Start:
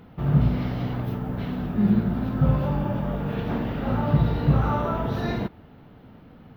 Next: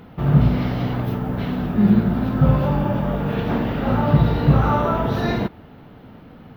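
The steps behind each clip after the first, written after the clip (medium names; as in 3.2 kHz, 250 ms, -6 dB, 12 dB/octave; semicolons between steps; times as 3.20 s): bass shelf 180 Hz -3 dB; trim +6.5 dB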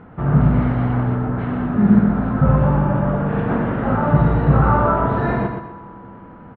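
resonant low-pass 1.5 kHz, resonance Q 1.5; feedback delay 122 ms, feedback 34%, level -6 dB; on a send at -20 dB: reverberation RT60 4.6 s, pre-delay 3 ms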